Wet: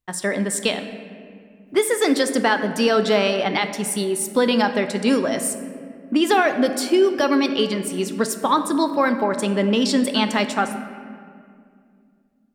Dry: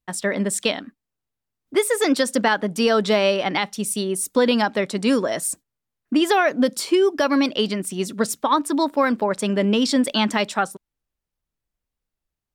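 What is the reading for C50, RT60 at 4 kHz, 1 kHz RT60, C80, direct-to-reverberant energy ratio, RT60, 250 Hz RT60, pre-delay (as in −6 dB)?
9.5 dB, 1.3 s, 2.0 s, 11.0 dB, 7.5 dB, 2.2 s, 3.2 s, 3 ms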